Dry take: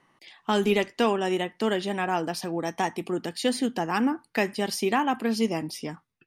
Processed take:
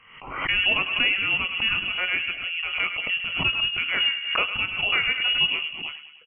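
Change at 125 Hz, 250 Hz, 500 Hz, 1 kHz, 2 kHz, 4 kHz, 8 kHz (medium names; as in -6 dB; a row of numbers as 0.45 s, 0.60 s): -5.0 dB, -16.0 dB, -14.0 dB, -6.0 dB, +11.0 dB, +13.5 dB, under -40 dB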